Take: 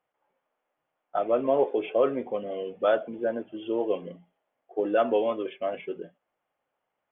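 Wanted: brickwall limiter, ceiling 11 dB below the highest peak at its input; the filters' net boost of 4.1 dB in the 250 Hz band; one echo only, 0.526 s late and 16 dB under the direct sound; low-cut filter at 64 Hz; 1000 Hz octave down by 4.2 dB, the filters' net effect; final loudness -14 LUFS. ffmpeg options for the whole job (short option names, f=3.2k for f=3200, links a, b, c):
-af "highpass=64,equalizer=f=250:t=o:g=6,equalizer=f=1k:t=o:g=-8,alimiter=limit=-22.5dB:level=0:latency=1,aecho=1:1:526:0.158,volume=19dB"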